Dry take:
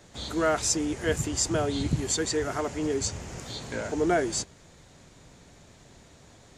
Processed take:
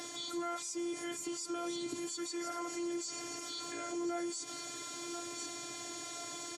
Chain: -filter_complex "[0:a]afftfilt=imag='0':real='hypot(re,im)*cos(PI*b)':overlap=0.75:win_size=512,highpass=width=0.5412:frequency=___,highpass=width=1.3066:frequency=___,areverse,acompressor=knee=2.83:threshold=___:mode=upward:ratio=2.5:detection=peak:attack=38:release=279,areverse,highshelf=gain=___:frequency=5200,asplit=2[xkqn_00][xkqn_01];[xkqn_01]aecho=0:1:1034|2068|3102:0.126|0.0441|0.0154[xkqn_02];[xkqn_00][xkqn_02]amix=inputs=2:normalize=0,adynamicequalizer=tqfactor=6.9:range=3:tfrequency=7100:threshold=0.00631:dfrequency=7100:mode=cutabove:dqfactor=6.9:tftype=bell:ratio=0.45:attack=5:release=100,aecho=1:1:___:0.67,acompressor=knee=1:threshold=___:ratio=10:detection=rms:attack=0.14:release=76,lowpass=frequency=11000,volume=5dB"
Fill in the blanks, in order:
120, 120, -36dB, 8.5, 6.7, -36dB